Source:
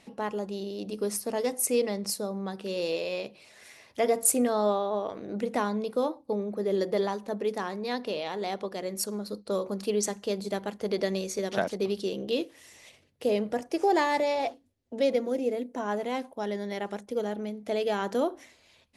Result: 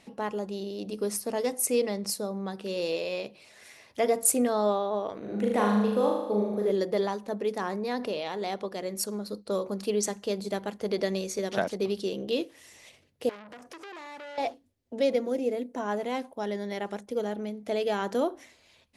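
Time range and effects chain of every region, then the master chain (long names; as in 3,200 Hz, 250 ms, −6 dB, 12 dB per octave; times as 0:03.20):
0:05.18–0:06.71: parametric band 5,000 Hz −7.5 dB 0.5 octaves + flutter between parallel walls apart 6.6 metres, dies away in 0.95 s
0:07.61–0:08.13: parametric band 3,500 Hz −6 dB 1.2 octaves + envelope flattener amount 50%
0:13.29–0:14.38: high-pass filter 47 Hz 24 dB per octave + downward compressor, threshold −36 dBFS + saturating transformer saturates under 3,000 Hz
whole clip: no processing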